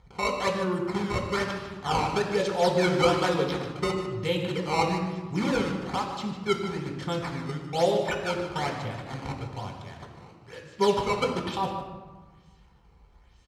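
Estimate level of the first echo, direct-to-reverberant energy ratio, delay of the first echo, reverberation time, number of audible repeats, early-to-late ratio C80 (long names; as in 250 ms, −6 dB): −12.0 dB, 2.0 dB, 151 ms, 1.4 s, 1, 6.0 dB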